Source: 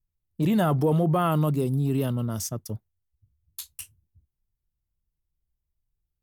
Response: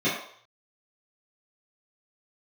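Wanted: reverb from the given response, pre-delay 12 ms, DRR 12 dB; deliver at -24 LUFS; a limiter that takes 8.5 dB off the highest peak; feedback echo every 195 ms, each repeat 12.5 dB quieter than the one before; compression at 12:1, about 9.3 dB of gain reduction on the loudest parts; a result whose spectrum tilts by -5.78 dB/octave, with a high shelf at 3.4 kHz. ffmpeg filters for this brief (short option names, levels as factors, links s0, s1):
-filter_complex "[0:a]highshelf=f=3400:g=-8.5,acompressor=threshold=0.0398:ratio=12,alimiter=level_in=1.78:limit=0.0631:level=0:latency=1,volume=0.562,aecho=1:1:195|390|585:0.237|0.0569|0.0137,asplit=2[s0][s1];[1:a]atrim=start_sample=2205,adelay=12[s2];[s1][s2]afir=irnorm=-1:irlink=0,volume=0.0501[s3];[s0][s3]amix=inputs=2:normalize=0,volume=4.47"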